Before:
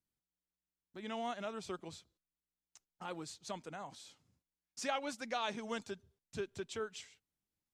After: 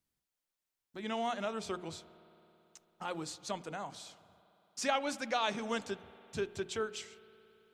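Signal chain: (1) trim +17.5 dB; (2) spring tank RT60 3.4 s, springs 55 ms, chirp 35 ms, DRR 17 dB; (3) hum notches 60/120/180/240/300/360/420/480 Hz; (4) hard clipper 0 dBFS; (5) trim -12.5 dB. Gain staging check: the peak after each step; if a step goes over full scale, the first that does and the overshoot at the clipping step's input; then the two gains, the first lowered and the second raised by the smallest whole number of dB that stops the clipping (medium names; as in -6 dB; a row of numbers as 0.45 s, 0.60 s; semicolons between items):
-3.5 dBFS, -3.5 dBFS, -3.5 dBFS, -3.5 dBFS, -16.0 dBFS; nothing clips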